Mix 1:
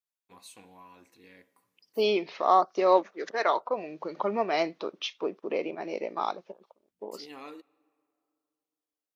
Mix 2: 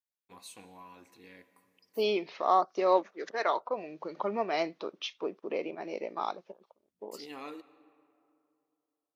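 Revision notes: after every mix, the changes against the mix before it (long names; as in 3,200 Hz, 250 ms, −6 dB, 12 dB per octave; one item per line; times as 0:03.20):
first voice: send +11.0 dB
second voice −3.5 dB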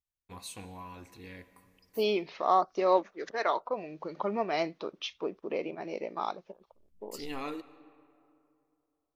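first voice +5.0 dB
master: remove high-pass filter 210 Hz 12 dB per octave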